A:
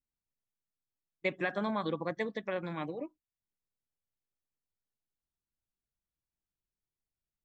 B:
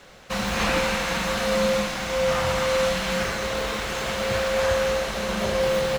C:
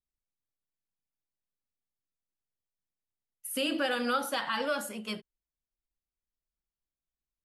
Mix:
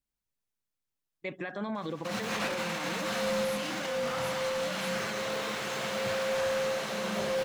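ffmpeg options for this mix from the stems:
ffmpeg -i stem1.wav -i stem2.wav -i stem3.wav -filter_complex "[0:a]volume=2.5dB[link_01];[1:a]highpass=frequency=120:width=0.5412,highpass=frequency=120:width=1.3066,asoftclip=type=hard:threshold=-20dB,adelay=1750,volume=-3.5dB[link_02];[2:a]volume=-6.5dB[link_03];[link_01][link_02][link_03]amix=inputs=3:normalize=0,alimiter=level_in=2dB:limit=-24dB:level=0:latency=1:release=43,volume=-2dB" out.wav

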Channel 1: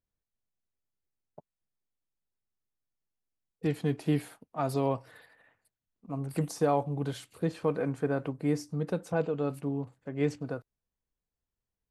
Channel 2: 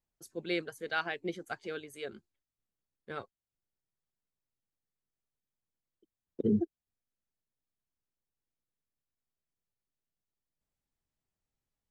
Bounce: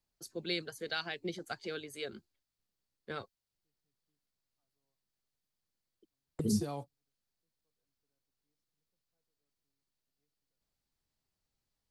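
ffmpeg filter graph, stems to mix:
ffmpeg -i stem1.wav -i stem2.wav -filter_complex "[0:a]highshelf=frequency=5200:gain=11,volume=-7dB[link_01];[1:a]volume=2dB,asplit=2[link_02][link_03];[link_03]apad=whole_len=524849[link_04];[link_01][link_04]sidechaingate=range=-56dB:threshold=-54dB:ratio=16:detection=peak[link_05];[link_05][link_02]amix=inputs=2:normalize=0,equalizer=frequency=4500:width_type=o:width=0.52:gain=7.5,acrossover=split=200|3000[link_06][link_07][link_08];[link_07]acompressor=threshold=-37dB:ratio=6[link_09];[link_06][link_09][link_08]amix=inputs=3:normalize=0" out.wav

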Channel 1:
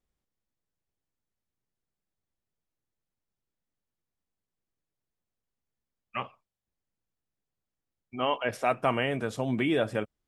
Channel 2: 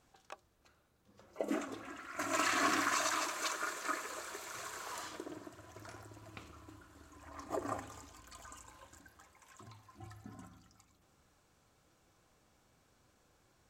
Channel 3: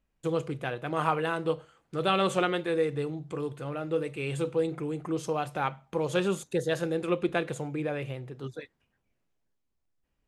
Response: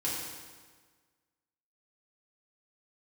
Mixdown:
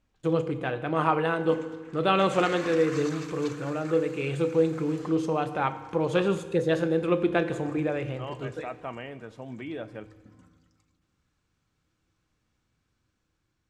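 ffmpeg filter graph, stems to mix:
-filter_complex "[0:a]volume=-11.5dB,asplit=2[link_01][link_02];[link_02]volume=-19.5dB[link_03];[1:a]equalizer=frequency=660:width_type=o:width=1.7:gain=-12.5,dynaudnorm=framelen=570:gausssize=5:maxgain=3.5dB,volume=-5.5dB,asplit=2[link_04][link_05];[link_05]volume=-17dB[link_06];[2:a]volume=1.5dB,asplit=2[link_07][link_08];[link_08]volume=-14.5dB[link_09];[3:a]atrim=start_sample=2205[link_10];[link_03][link_06][link_09]amix=inputs=3:normalize=0[link_11];[link_11][link_10]afir=irnorm=-1:irlink=0[link_12];[link_01][link_04][link_07][link_12]amix=inputs=4:normalize=0,aemphasis=mode=reproduction:type=50fm"

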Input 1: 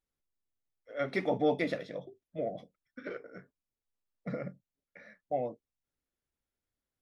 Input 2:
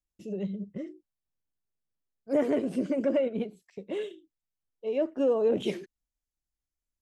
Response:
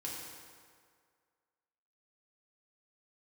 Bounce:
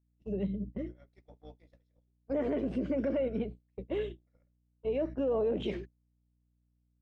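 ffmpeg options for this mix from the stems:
-filter_complex "[0:a]bass=frequency=250:gain=-5,treble=frequency=4000:gain=12,acrossover=split=240|670[link_01][link_02][link_03];[link_01]acompressor=threshold=-53dB:ratio=4[link_04];[link_02]acompressor=threshold=-32dB:ratio=4[link_05];[link_03]acompressor=threshold=-39dB:ratio=4[link_06];[link_04][link_05][link_06]amix=inputs=3:normalize=0,volume=-13.5dB[link_07];[1:a]aeval=exprs='val(0)+0.00794*(sin(2*PI*60*n/s)+sin(2*PI*2*60*n/s)/2+sin(2*PI*3*60*n/s)/3+sin(2*PI*4*60*n/s)/4+sin(2*PI*5*60*n/s)/5)':channel_layout=same,lowpass=3200,alimiter=limit=-23.5dB:level=0:latency=1:release=46,volume=-0.5dB[link_08];[link_07][link_08]amix=inputs=2:normalize=0,agate=range=-31dB:threshold=-39dB:ratio=16:detection=peak"

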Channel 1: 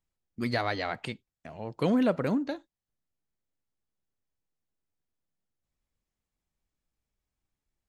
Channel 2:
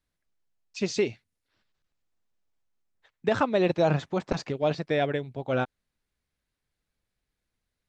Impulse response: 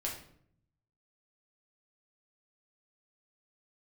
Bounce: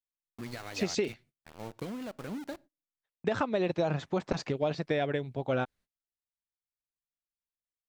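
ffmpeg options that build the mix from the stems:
-filter_complex "[0:a]acompressor=threshold=-31dB:ratio=10,aphaser=in_gain=1:out_gain=1:delay=1.2:decay=0.27:speed=1.2:type=triangular,aeval=exprs='val(0)*gte(abs(val(0)),0.0133)':channel_layout=same,volume=-5.5dB,asplit=2[link_01][link_02];[link_02]volume=-23.5dB[link_03];[1:a]volume=0.5dB[link_04];[2:a]atrim=start_sample=2205[link_05];[link_03][link_05]afir=irnorm=-1:irlink=0[link_06];[link_01][link_04][link_06]amix=inputs=3:normalize=0,agate=range=-28dB:threshold=-53dB:ratio=16:detection=peak,acompressor=threshold=-25dB:ratio=10"

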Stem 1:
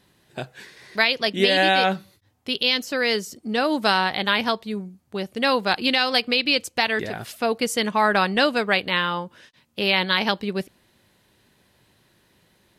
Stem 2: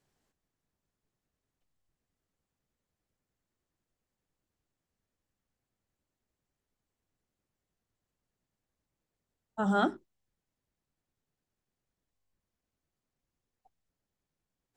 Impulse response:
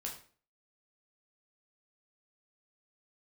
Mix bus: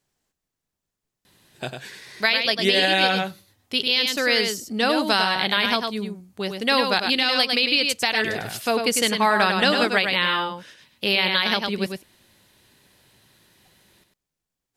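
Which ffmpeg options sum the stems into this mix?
-filter_complex "[0:a]adelay=1250,volume=-0.5dB,asplit=2[link_01][link_02];[link_02]volume=-6dB[link_03];[1:a]volume=0dB[link_04];[link_03]aecho=0:1:100:1[link_05];[link_01][link_04][link_05]amix=inputs=3:normalize=0,highshelf=frequency=2300:gain=6.5,alimiter=limit=-7.5dB:level=0:latency=1:release=140"

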